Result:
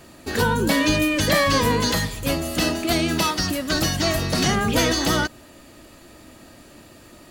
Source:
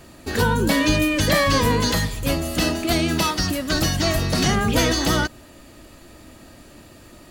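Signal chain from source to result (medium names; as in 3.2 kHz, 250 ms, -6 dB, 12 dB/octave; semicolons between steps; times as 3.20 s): bass shelf 95 Hz -6.5 dB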